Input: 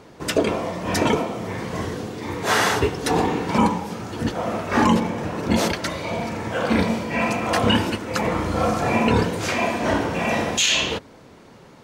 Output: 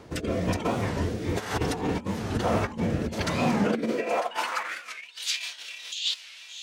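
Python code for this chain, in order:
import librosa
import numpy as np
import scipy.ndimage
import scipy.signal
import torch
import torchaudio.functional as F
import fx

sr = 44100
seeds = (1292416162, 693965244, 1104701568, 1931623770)

p1 = x + fx.echo_diffused(x, sr, ms=1360, feedback_pct=47, wet_db=-16.0, dry=0)
p2 = fx.over_compress(p1, sr, threshold_db=-24.0, ratio=-0.5)
p3 = fx.filter_sweep_highpass(p2, sr, from_hz=69.0, to_hz=3600.0, start_s=5.53, end_s=9.18, q=2.5)
p4 = fx.rotary(p3, sr, hz=0.6)
p5 = fx.stretch_vocoder(p4, sr, factor=0.56)
y = fx.record_warp(p5, sr, rpm=45.0, depth_cents=160.0)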